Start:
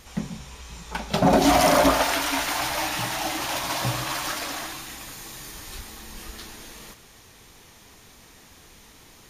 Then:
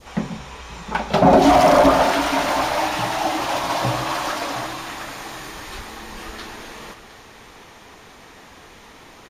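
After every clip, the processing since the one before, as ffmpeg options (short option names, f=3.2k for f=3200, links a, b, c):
-filter_complex "[0:a]aecho=1:1:712:0.188,asplit=2[a][b];[b]highpass=f=720:p=1,volume=12dB,asoftclip=type=tanh:threshold=-9.5dB[c];[a][c]amix=inputs=2:normalize=0,lowpass=f=1.1k:p=1,volume=-6dB,adynamicequalizer=threshold=0.0126:dfrequency=1800:dqfactor=0.78:tfrequency=1800:tqfactor=0.78:attack=5:release=100:ratio=0.375:range=2.5:mode=cutabove:tftype=bell,volume=7dB"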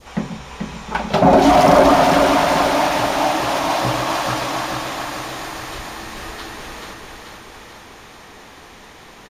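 -af "aecho=1:1:436|872|1308|1744|2180|2616|3052|3488:0.562|0.332|0.196|0.115|0.0681|0.0402|0.0237|0.014,volume=1dB"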